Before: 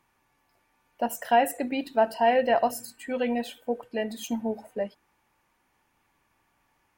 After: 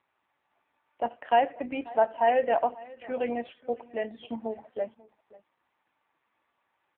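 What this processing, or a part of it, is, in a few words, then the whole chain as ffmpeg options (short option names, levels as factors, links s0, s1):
satellite phone: -filter_complex "[0:a]asettb=1/sr,asplit=3[s0][s1][s2];[s0]atrim=end=2.064[s3];[s1]atrim=start=2.06:end=3.04,asetpts=PTS-STARTPTS,afade=t=in:d=0.004:c=qsin,afade=t=out:st=0.976:d=0.004:c=qsin,highpass=130[s4];[s2]atrim=start=3.036[s5];[s3][s4]acrossfade=d=0.004:c1=hsin:c2=qsin[s6];[s6][s5]acrossfade=d=0.004:c1=qsin:c2=hsin,highpass=310,lowpass=3000,aecho=1:1:540:0.0944" -ar 8000 -c:a libopencore_amrnb -b:a 5900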